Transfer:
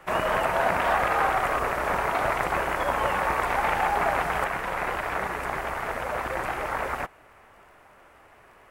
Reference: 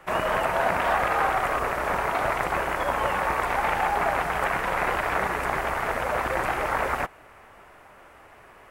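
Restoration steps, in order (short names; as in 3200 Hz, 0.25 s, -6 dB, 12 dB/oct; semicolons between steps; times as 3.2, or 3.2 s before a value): de-click; gain correction +3.5 dB, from 4.44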